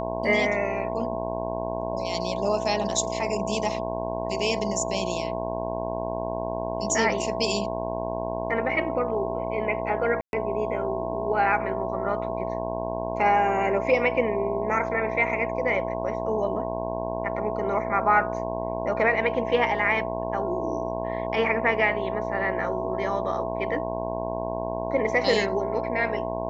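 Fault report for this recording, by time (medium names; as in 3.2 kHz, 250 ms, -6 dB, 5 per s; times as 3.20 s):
buzz 60 Hz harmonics 18 -32 dBFS
whine 660 Hz -32 dBFS
10.21–10.33 s: dropout 121 ms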